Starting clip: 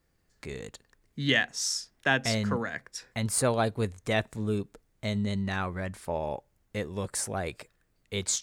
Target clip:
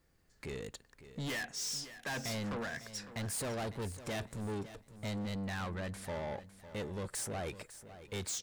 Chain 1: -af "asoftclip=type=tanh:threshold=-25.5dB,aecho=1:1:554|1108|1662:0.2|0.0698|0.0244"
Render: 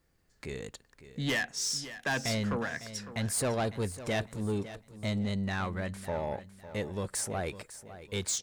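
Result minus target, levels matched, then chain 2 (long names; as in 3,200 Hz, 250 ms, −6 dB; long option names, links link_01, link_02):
soft clipping: distortion −6 dB
-af "asoftclip=type=tanh:threshold=-36dB,aecho=1:1:554|1108|1662:0.2|0.0698|0.0244"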